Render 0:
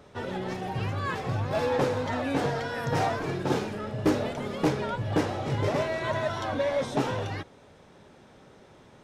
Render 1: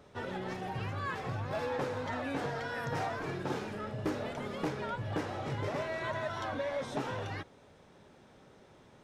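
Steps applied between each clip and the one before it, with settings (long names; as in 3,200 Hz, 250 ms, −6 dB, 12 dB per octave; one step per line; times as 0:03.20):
dynamic equaliser 1,500 Hz, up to +4 dB, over −41 dBFS, Q 0.87
downward compressor 2 to 1, threshold −30 dBFS, peak gain reduction 6.5 dB
level −5 dB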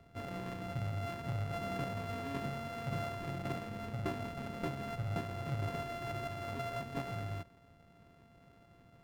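samples sorted by size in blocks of 64 samples
bass and treble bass +7 dB, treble −11 dB
level −5 dB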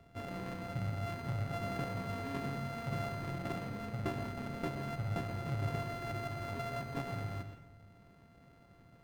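convolution reverb RT60 0.65 s, pre-delay 123 ms, DRR 7.5 dB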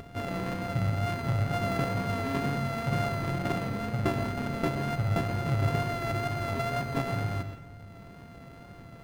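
upward compression, threshold −49 dBFS
pitch vibrato 2.1 Hz 24 cents
level +9 dB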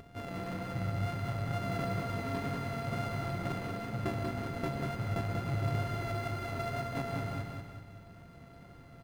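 repeating echo 189 ms, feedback 47%, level −4 dB
level −7.5 dB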